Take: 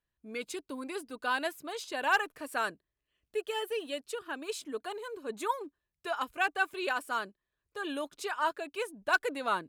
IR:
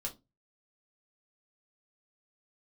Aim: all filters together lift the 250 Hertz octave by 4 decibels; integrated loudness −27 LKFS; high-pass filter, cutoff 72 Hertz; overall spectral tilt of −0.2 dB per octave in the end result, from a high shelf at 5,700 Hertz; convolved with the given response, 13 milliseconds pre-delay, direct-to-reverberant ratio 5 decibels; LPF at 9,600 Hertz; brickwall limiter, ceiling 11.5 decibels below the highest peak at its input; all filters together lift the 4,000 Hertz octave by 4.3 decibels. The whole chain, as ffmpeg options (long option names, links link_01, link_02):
-filter_complex "[0:a]highpass=72,lowpass=9600,equalizer=frequency=250:width_type=o:gain=5,equalizer=frequency=4000:width_type=o:gain=9,highshelf=frequency=5700:gain=-9,alimiter=level_in=1.5dB:limit=-24dB:level=0:latency=1,volume=-1.5dB,asplit=2[link_01][link_02];[1:a]atrim=start_sample=2205,adelay=13[link_03];[link_02][link_03]afir=irnorm=-1:irlink=0,volume=-5dB[link_04];[link_01][link_04]amix=inputs=2:normalize=0,volume=8.5dB"